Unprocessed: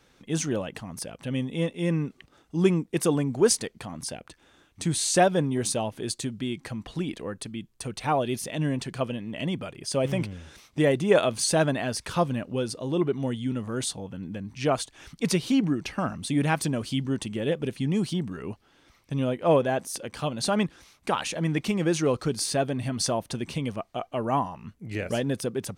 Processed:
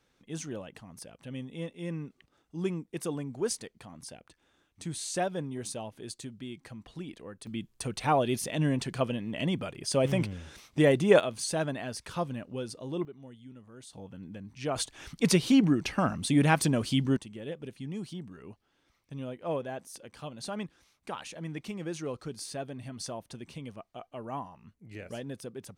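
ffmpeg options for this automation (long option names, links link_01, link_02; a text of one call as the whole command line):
ffmpeg -i in.wav -af "asetnsamples=nb_out_samples=441:pad=0,asendcmd='7.47 volume volume -0.5dB;11.2 volume volume -8dB;13.05 volume volume -20dB;13.93 volume volume -8dB;14.76 volume volume 1dB;17.17 volume volume -12dB',volume=-10.5dB" out.wav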